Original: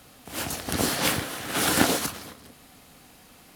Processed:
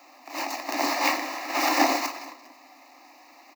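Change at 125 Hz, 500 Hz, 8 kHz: under -30 dB, 0.0 dB, -6.5 dB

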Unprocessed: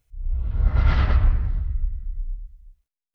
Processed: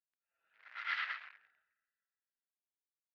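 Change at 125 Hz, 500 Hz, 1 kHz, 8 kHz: under -40 dB, under -30 dB, -11.5 dB, n/a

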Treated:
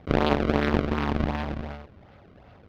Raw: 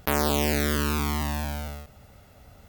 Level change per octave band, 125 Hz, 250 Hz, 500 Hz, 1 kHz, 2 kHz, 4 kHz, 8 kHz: +0.5 dB, +3.0 dB, +3.0 dB, +1.0 dB, -1.0 dB, -4.5 dB, under -20 dB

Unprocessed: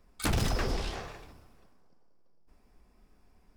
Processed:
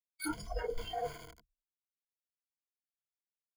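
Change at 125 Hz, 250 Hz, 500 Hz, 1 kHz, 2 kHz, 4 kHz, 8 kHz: -16.5, -7.0, -1.5, -2.5, -7.5, -9.5, -8.0 dB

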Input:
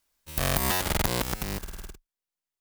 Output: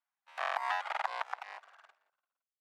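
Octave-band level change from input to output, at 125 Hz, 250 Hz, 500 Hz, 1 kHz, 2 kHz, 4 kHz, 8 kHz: under -40 dB, under -40 dB, -11.5 dB, -1.5 dB, -4.5 dB, -14.5 dB, under -25 dB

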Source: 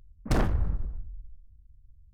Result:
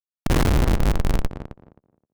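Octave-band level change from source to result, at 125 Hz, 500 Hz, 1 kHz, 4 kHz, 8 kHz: +9.0, +9.5, +9.0, +13.0, +13.0 dB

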